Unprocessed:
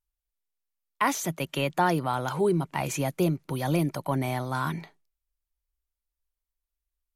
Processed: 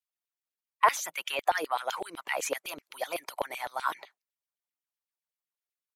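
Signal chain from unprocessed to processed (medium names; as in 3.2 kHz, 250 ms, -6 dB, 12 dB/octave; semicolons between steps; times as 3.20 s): tempo 1.2×; harmonic-percussive split harmonic -14 dB; LFO high-pass saw down 7.9 Hz 440–3200 Hz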